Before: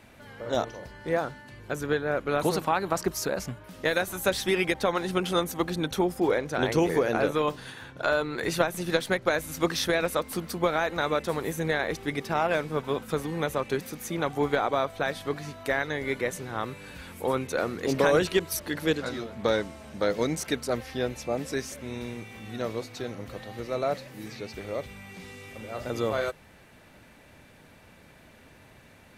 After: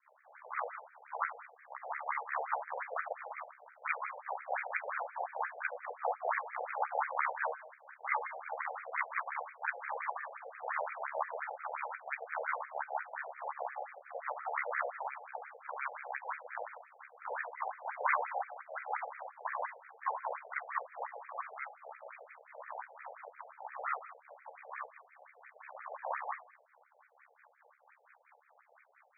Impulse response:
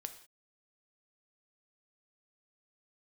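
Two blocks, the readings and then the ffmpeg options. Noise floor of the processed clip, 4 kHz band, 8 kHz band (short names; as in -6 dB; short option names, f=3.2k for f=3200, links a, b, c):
-67 dBFS, under -40 dB, under -40 dB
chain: -filter_complex "[0:a]aeval=exprs='abs(val(0))':c=same,acrossover=split=330 3400:gain=0.158 1 0.141[a][b][c];[a][b][c]amix=inputs=3:normalize=0,aeval=exprs='val(0)*sin(2*PI*35*n/s)':c=same,highpass=56,asplit=2[d][e];[1:a]atrim=start_sample=2205,lowpass=7k,adelay=44[f];[e][f]afir=irnorm=-1:irlink=0,volume=8.5dB[g];[d][g]amix=inputs=2:normalize=0,acrossover=split=560[h][i];[h]aeval=exprs='val(0)*(1-0.7/2+0.7/2*cos(2*PI*4.5*n/s))':c=same[j];[i]aeval=exprs='val(0)*(1-0.7/2-0.7/2*cos(2*PI*4.5*n/s))':c=same[k];[j][k]amix=inputs=2:normalize=0,afftfilt=real='re*between(b*sr/1024,600*pow(1800/600,0.5+0.5*sin(2*PI*5.7*pts/sr))/1.41,600*pow(1800/600,0.5+0.5*sin(2*PI*5.7*pts/sr))*1.41)':imag='im*between(b*sr/1024,600*pow(1800/600,0.5+0.5*sin(2*PI*5.7*pts/sr))/1.41,600*pow(1800/600,0.5+0.5*sin(2*PI*5.7*pts/sr))*1.41)':win_size=1024:overlap=0.75"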